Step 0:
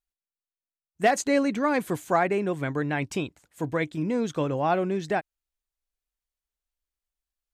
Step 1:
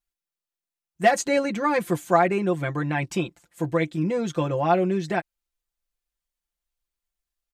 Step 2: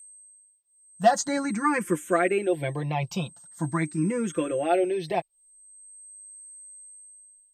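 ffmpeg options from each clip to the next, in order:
-af "aecho=1:1:5.8:0.81"
-filter_complex "[0:a]aeval=exprs='val(0)+0.00631*sin(2*PI*8300*n/s)':c=same,asplit=2[a][b];[b]afreqshift=0.43[c];[a][c]amix=inputs=2:normalize=1,volume=1dB"

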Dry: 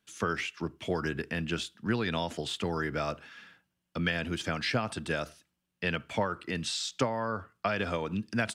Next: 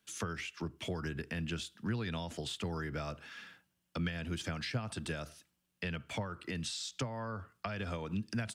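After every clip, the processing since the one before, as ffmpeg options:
-filter_complex "[0:a]highshelf=f=4.6k:g=5,acrossover=split=160[a][b];[b]acompressor=threshold=-38dB:ratio=6[c];[a][c]amix=inputs=2:normalize=0"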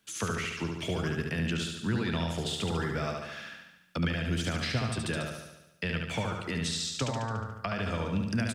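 -af "aecho=1:1:72|144|216|288|360|432|504|576|648:0.631|0.379|0.227|0.136|0.0818|0.0491|0.0294|0.0177|0.0106,volume=5dB"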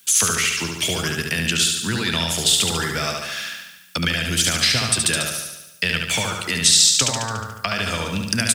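-af "crystalizer=i=8.5:c=0,volume=4dB"

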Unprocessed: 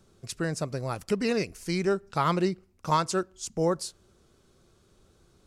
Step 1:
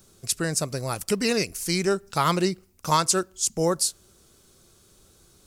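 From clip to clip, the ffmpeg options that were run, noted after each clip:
-af "aemphasis=mode=production:type=75kf,volume=2dB"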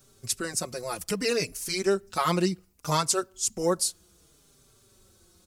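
-filter_complex "[0:a]asplit=2[a][b];[b]adelay=4.6,afreqshift=-0.65[c];[a][c]amix=inputs=2:normalize=1"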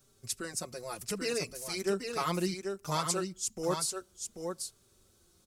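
-af "aecho=1:1:788:0.531,volume=-7dB"

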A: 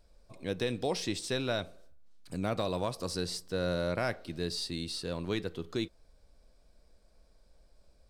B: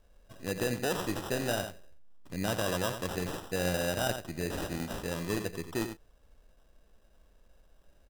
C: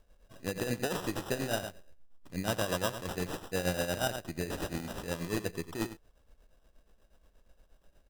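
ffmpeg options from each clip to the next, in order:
-af "aecho=1:1:89:0.376,acrusher=samples=20:mix=1:aa=0.000001,equalizer=f=12k:t=o:w=2.8:g=3.5"
-af "tremolo=f=8.4:d=0.67,volume=1.5dB"

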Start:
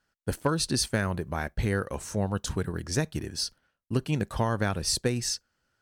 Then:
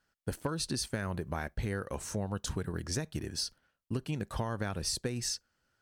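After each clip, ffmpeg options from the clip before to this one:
-af "acompressor=threshold=-29dB:ratio=6,volume=-1.5dB"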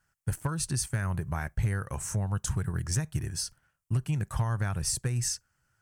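-af "equalizer=f=125:t=o:w=1:g=8,equalizer=f=250:t=o:w=1:g=-9,equalizer=f=500:t=o:w=1:g=-8,equalizer=f=4k:t=o:w=1:g=-11,equalizer=f=8k:t=o:w=1:g=5,asoftclip=type=hard:threshold=-24.5dB,volume=4.5dB"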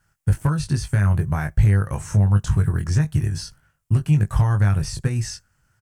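-filter_complex "[0:a]lowshelf=f=260:g=6,asplit=2[a][b];[b]adelay=20,volume=-6dB[c];[a][c]amix=inputs=2:normalize=0,acrossover=split=4800[d][e];[e]acompressor=threshold=-46dB:ratio=4:attack=1:release=60[f];[d][f]amix=inputs=2:normalize=0,volume=5.5dB"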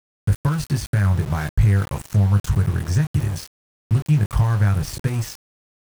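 -af "aeval=exprs='val(0)*gte(abs(val(0)),0.0355)':c=same"

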